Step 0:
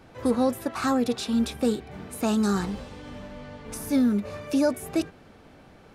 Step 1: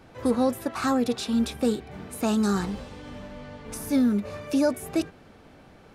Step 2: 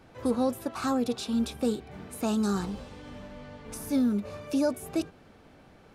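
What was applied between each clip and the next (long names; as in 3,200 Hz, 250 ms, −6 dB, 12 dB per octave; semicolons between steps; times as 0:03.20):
no processing that can be heard
dynamic equaliser 1,900 Hz, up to −6 dB, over −51 dBFS, Q 2.8; level −3.5 dB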